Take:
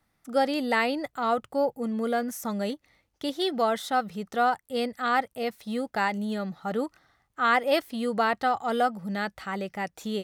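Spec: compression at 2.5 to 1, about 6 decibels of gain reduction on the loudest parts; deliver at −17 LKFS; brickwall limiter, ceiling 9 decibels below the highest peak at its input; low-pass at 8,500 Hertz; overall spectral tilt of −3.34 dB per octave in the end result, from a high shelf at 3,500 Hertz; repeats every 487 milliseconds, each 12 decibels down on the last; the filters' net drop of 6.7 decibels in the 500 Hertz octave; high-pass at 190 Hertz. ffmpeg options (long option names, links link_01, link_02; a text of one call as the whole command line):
ffmpeg -i in.wav -af "highpass=190,lowpass=8500,equalizer=frequency=500:width_type=o:gain=-8.5,highshelf=frequency=3500:gain=8.5,acompressor=threshold=-28dB:ratio=2.5,alimiter=level_in=1dB:limit=-24dB:level=0:latency=1,volume=-1dB,aecho=1:1:487|974|1461:0.251|0.0628|0.0157,volume=18.5dB" out.wav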